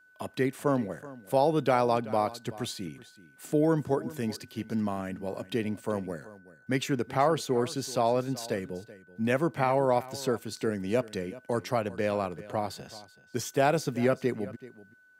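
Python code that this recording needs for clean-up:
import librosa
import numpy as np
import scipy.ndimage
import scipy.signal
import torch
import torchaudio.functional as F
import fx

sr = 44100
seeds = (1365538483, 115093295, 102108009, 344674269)

y = fx.notch(x, sr, hz=1500.0, q=30.0)
y = fx.fix_echo_inverse(y, sr, delay_ms=380, level_db=-18.0)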